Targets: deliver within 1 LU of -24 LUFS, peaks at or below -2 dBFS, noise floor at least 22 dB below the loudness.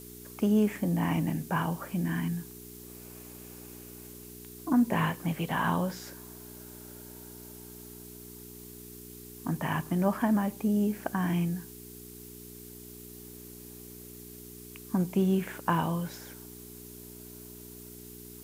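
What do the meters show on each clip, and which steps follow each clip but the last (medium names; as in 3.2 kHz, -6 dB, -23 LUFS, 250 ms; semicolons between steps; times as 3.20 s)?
hum 60 Hz; highest harmonic 420 Hz; hum level -47 dBFS; noise floor -47 dBFS; noise floor target -52 dBFS; loudness -29.5 LUFS; peak level -11.5 dBFS; loudness target -24.0 LUFS
-> de-hum 60 Hz, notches 7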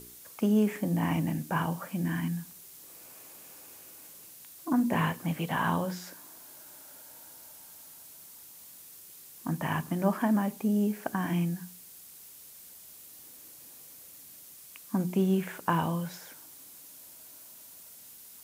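hum not found; noise floor -51 dBFS; noise floor target -52 dBFS
-> noise print and reduce 6 dB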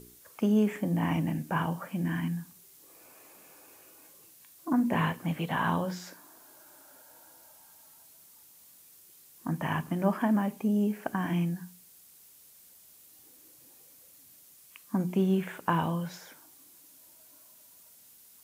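noise floor -57 dBFS; loudness -30.0 LUFS; peak level -11.5 dBFS; loudness target -24.0 LUFS
-> trim +6 dB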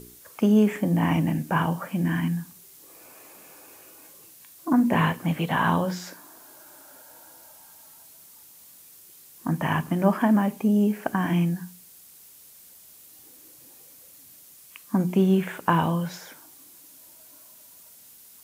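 loudness -24.0 LUFS; peak level -5.5 dBFS; noise floor -51 dBFS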